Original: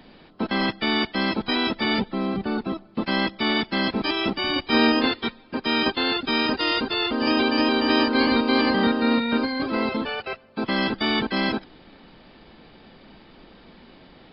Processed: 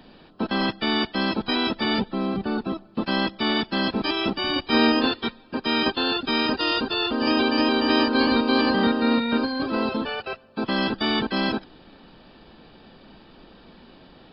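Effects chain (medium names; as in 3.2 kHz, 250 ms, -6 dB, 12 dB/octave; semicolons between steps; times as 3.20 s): band-stop 2.1 kHz, Q 5.7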